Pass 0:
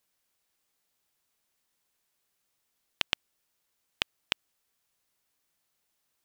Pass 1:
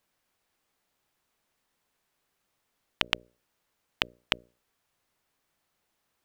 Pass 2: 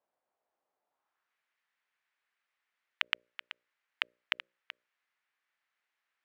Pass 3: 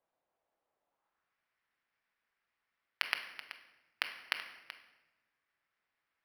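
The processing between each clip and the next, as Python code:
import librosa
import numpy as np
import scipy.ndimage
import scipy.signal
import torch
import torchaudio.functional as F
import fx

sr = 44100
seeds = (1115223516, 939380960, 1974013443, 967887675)

y1 = fx.high_shelf(x, sr, hz=3100.0, db=-10.5)
y1 = fx.hum_notches(y1, sr, base_hz=60, count=10)
y1 = y1 * 10.0 ** (7.0 / 20.0)
y2 = fx.filter_sweep_bandpass(y1, sr, from_hz=670.0, to_hz=1900.0, start_s=0.83, end_s=1.35, q=1.7)
y2 = y2 + 10.0 ** (-13.5 / 20.0) * np.pad(y2, (int(380 * sr / 1000.0), 0))[:len(y2)]
y3 = fx.room_shoebox(y2, sr, seeds[0], volume_m3=670.0, walls='mixed', distance_m=0.7)
y3 = np.interp(np.arange(len(y3)), np.arange(len(y3))[::6], y3[::6])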